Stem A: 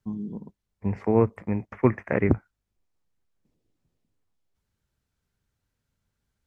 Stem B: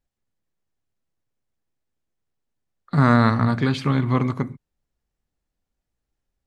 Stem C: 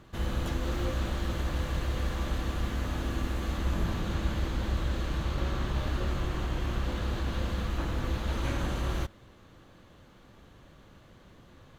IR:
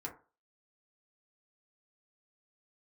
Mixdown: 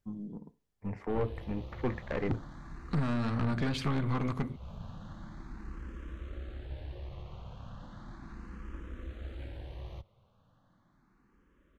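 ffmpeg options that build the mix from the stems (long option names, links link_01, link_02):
-filter_complex "[0:a]volume=-6.5dB,asplit=2[link_01][link_02];[link_02]volume=-9.5dB[link_03];[1:a]acompressor=threshold=-20dB:ratio=5,volume=-1.5dB,asplit=2[link_04][link_05];[2:a]aemphasis=mode=reproduction:type=75kf,acrossover=split=180|3000[link_06][link_07][link_08];[link_07]acompressor=threshold=-36dB:ratio=6[link_09];[link_06][link_09][link_08]amix=inputs=3:normalize=0,asplit=2[link_10][link_11];[link_11]afreqshift=0.36[link_12];[link_10][link_12]amix=inputs=2:normalize=1,adelay=950,volume=-7.5dB[link_13];[link_05]apad=whole_len=561777[link_14];[link_13][link_14]sidechaincompress=threshold=-32dB:ratio=8:attack=5.6:release=328[link_15];[3:a]atrim=start_sample=2205[link_16];[link_03][link_16]afir=irnorm=-1:irlink=0[link_17];[link_01][link_04][link_15][link_17]amix=inputs=4:normalize=0,aeval=exprs='(tanh(17.8*val(0)+0.5)-tanh(0.5))/17.8':channel_layout=same"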